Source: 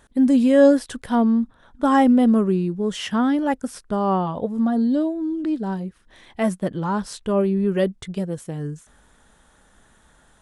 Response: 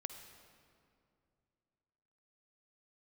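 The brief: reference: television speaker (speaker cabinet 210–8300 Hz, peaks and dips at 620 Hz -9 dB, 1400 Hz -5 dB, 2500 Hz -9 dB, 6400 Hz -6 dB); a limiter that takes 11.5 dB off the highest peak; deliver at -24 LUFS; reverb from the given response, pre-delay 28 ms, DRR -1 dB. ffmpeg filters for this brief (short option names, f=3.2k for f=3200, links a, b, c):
-filter_complex "[0:a]alimiter=limit=-16.5dB:level=0:latency=1,asplit=2[a][b];[1:a]atrim=start_sample=2205,adelay=28[c];[b][c]afir=irnorm=-1:irlink=0,volume=3.5dB[d];[a][d]amix=inputs=2:normalize=0,highpass=f=210:w=0.5412,highpass=f=210:w=1.3066,equalizer=f=620:t=q:w=4:g=-9,equalizer=f=1.4k:t=q:w=4:g=-5,equalizer=f=2.5k:t=q:w=4:g=-9,equalizer=f=6.4k:t=q:w=4:g=-6,lowpass=f=8.3k:w=0.5412,lowpass=f=8.3k:w=1.3066"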